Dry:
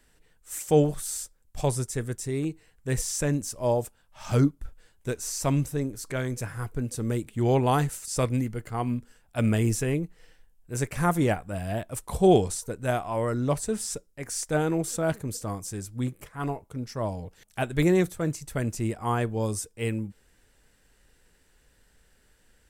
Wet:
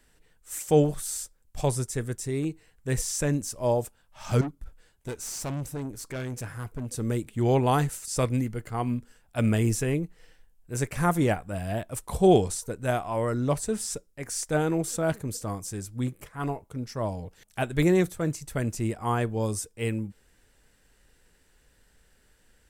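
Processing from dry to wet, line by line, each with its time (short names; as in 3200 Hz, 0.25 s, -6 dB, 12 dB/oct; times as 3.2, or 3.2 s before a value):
4.41–6.91 tube stage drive 29 dB, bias 0.35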